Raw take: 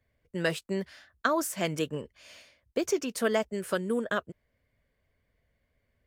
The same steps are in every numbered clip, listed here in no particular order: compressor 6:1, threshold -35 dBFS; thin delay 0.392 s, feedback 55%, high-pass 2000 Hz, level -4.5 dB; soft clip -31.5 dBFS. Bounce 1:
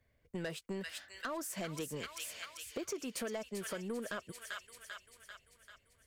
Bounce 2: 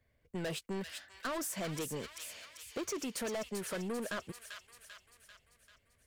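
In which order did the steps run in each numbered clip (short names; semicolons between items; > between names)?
thin delay > compressor > soft clip; soft clip > thin delay > compressor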